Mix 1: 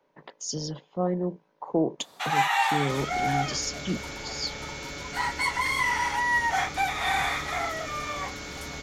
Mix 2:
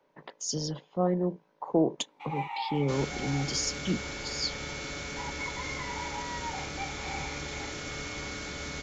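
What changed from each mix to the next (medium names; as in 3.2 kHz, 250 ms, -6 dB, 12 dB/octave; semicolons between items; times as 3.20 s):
first sound: add vowel filter u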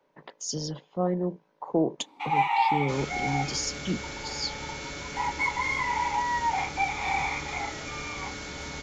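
first sound +11.5 dB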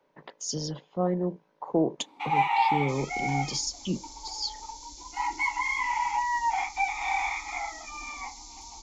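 second sound: add inverse Chebyshev band-stop 120–2000 Hz, stop band 50 dB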